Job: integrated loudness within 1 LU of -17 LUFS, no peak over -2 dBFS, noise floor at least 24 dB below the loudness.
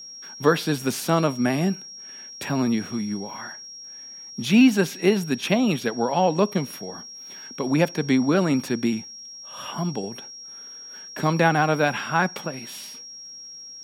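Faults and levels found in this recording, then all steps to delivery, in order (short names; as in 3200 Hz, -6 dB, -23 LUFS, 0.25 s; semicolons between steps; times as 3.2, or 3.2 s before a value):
ticks 27/s; steady tone 5600 Hz; tone level -38 dBFS; loudness -23.0 LUFS; peak -5.0 dBFS; loudness target -17.0 LUFS
-> de-click; notch 5600 Hz, Q 30; gain +6 dB; limiter -2 dBFS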